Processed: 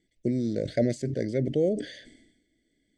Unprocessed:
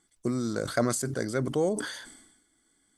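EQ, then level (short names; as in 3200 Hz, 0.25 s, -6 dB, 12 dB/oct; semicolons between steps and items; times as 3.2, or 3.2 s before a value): Chebyshev band-stop 620–1900 Hz, order 3; air absorption 110 m; high shelf 5100 Hz -10 dB; +3.0 dB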